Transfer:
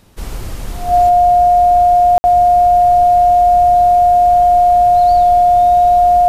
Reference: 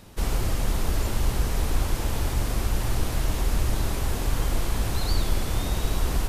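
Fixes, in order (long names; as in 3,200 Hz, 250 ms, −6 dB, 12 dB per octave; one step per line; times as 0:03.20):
notch filter 710 Hz, Q 30
ambience match 0:02.18–0:02.24
level 0 dB, from 0:01.09 +4 dB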